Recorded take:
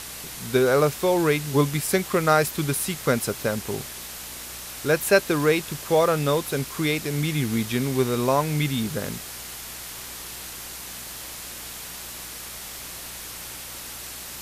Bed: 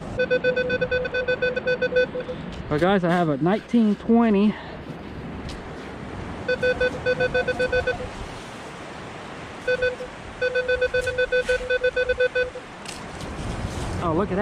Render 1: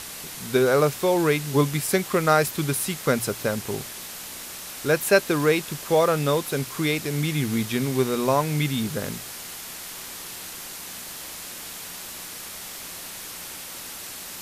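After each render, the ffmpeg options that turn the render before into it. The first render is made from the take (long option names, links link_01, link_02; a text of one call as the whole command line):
ffmpeg -i in.wav -af "bandreject=frequency=60:width_type=h:width=4,bandreject=frequency=120:width_type=h:width=4" out.wav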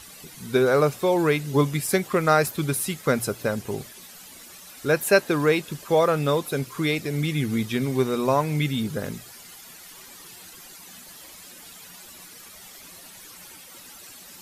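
ffmpeg -i in.wav -af "afftdn=noise_reduction=12:noise_floor=-38" out.wav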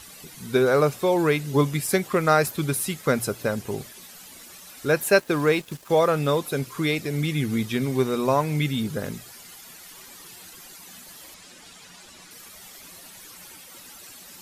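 ffmpeg -i in.wav -filter_complex "[0:a]asettb=1/sr,asplit=3[link_01][link_02][link_03];[link_01]atrim=end=5.074[link_04];[link_02]atrim=start=5.07:end=5.9,asetpts=PTS-STARTPTS,afade=type=in:duration=0.004:curve=qsin,afade=type=out:start_time=0.826:duration=0.004:curve=qsin,aeval=exprs='sgn(val(0))*max(abs(val(0))-0.00596,0)':channel_layout=same[link_05];[link_03]atrim=start=5.896[link_06];[link_04][link_05]acrossfade=duration=0.004:curve1=hsin:curve2=qsin[link_07];[link_07][link_06]acrossfade=duration=0.004:curve1=qsin:curve2=hsin,asettb=1/sr,asplit=3[link_08][link_09][link_10];[link_08]atrim=end=11.344[link_11];[link_09]atrim=start=11.34:end=12.31,asetpts=PTS-STARTPTS,afade=type=in:duration=0.004:curve=qsin,afade=type=out:start_time=0.966:duration=0.004:curve=qsin,lowpass=7800[link_12];[link_10]atrim=start=12.306[link_13];[link_11][link_12]acrossfade=duration=0.004:curve1=hsin:curve2=qsin[link_14];[link_14][link_13]acrossfade=duration=0.004:curve1=qsin:curve2=hsin" out.wav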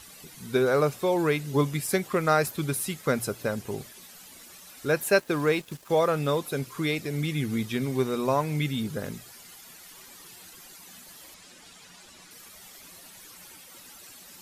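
ffmpeg -i in.wav -af "volume=-3.5dB" out.wav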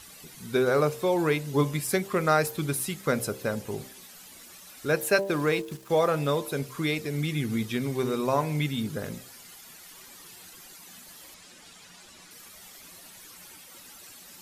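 ffmpeg -i in.wav -af "bandreject=frequency=65.4:width_type=h:width=4,bandreject=frequency=130.8:width_type=h:width=4,bandreject=frequency=196.2:width_type=h:width=4,bandreject=frequency=261.6:width_type=h:width=4,bandreject=frequency=327:width_type=h:width=4,bandreject=frequency=392.4:width_type=h:width=4,bandreject=frequency=457.8:width_type=h:width=4,bandreject=frequency=523.2:width_type=h:width=4,bandreject=frequency=588.6:width_type=h:width=4,bandreject=frequency=654:width_type=h:width=4,bandreject=frequency=719.4:width_type=h:width=4,bandreject=frequency=784.8:width_type=h:width=4,bandreject=frequency=850.2:width_type=h:width=4,bandreject=frequency=915.6:width_type=h:width=4,bandreject=frequency=981:width_type=h:width=4,bandreject=frequency=1046.4:width_type=h:width=4" out.wav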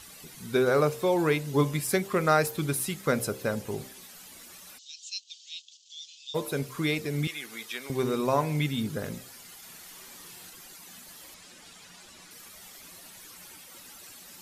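ffmpeg -i in.wav -filter_complex "[0:a]asplit=3[link_01][link_02][link_03];[link_01]afade=type=out:start_time=4.77:duration=0.02[link_04];[link_02]asuperpass=centerf=4700:order=12:qfactor=1.1,afade=type=in:start_time=4.77:duration=0.02,afade=type=out:start_time=6.34:duration=0.02[link_05];[link_03]afade=type=in:start_time=6.34:duration=0.02[link_06];[link_04][link_05][link_06]amix=inputs=3:normalize=0,asettb=1/sr,asplit=3[link_07][link_08][link_09];[link_07]atrim=end=7.274[link_10];[link_08]atrim=start=7.27:end=7.9,asetpts=PTS-STARTPTS,afade=type=in:duration=0.004:curve=qsin,afade=type=out:start_time=0.626:duration=0.004:curve=qsin,highpass=750[link_11];[link_09]atrim=start=7.896[link_12];[link_10][link_11]acrossfade=duration=0.004:curve1=hsin:curve2=qsin[link_13];[link_13][link_12]acrossfade=duration=0.004:curve1=qsin:curve2=hsin,asettb=1/sr,asplit=3[link_14][link_15][link_16];[link_14]atrim=end=9.584[link_17];[link_15]atrim=start=9.58:end=10.5,asetpts=PTS-STARTPTS,afade=type=in:duration=0.004:curve=qsin,afade=type=out:start_time=0.916:duration=0.004:curve=qsin,asplit=2[link_18][link_19];[link_19]adelay=45,volume=-6dB[link_20];[link_18][link_20]amix=inputs=2:normalize=0,atrim=end_sample=40572[link_21];[link_16]atrim=start=10.496[link_22];[link_17][link_21]acrossfade=duration=0.004:curve1=hsin:curve2=qsin[link_23];[link_23][link_22]acrossfade=duration=0.004:curve1=qsin:curve2=hsin" out.wav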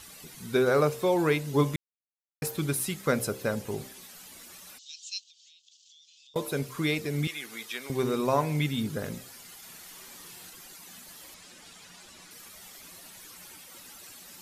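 ffmpeg -i in.wav -filter_complex "[0:a]asettb=1/sr,asplit=3[link_01][link_02][link_03];[link_01]atrim=end=5.234[link_04];[link_02]atrim=start=5.23:end=6.36,asetpts=PTS-STARTPTS,afade=type=in:duration=0.004:curve=qsin,afade=type=out:start_time=1.126:duration=0.004:curve=qsin,acompressor=threshold=-53dB:ratio=20:attack=3.2:release=140:knee=1:detection=peak[link_05];[link_03]atrim=start=6.356[link_06];[link_04][link_05]acrossfade=duration=0.004:curve1=hsin:curve2=qsin[link_07];[link_07][link_06]acrossfade=duration=0.004:curve1=qsin:curve2=hsin,asplit=3[link_08][link_09][link_10];[link_08]atrim=end=1.76,asetpts=PTS-STARTPTS,afade=type=out:start_time=1.756:duration=0.004:curve=hsin[link_11];[link_09]atrim=start=1.76:end=2.42,asetpts=PTS-STARTPTS,volume=0[link_12];[link_10]atrim=start=2.42,asetpts=PTS-STARTPTS,afade=type=in:duration=0.004:curve=hsin[link_13];[link_11][link_12][link_13]concat=n=3:v=0:a=1" out.wav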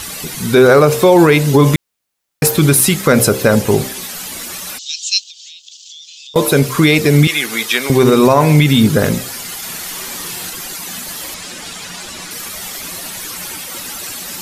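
ffmpeg -i in.wav -af "acontrast=73,alimiter=level_in=14.5dB:limit=-1dB:release=50:level=0:latency=1" out.wav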